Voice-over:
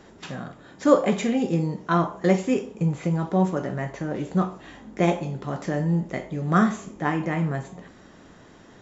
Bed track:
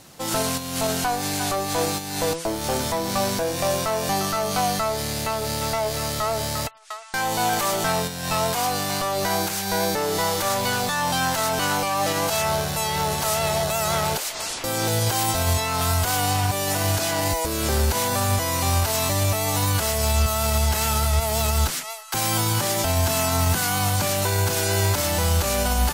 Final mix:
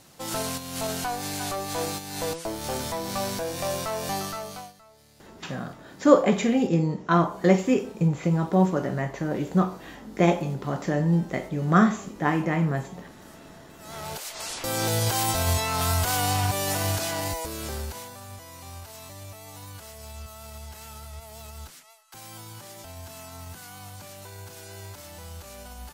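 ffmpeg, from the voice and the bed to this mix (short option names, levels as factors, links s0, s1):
-filter_complex "[0:a]adelay=5200,volume=1.12[s0];[1:a]volume=11.9,afade=t=out:st=4.15:d=0.58:silence=0.0630957,afade=t=in:st=13.78:d=0.96:silence=0.0421697,afade=t=out:st=16.6:d=1.55:silence=0.125893[s1];[s0][s1]amix=inputs=2:normalize=0"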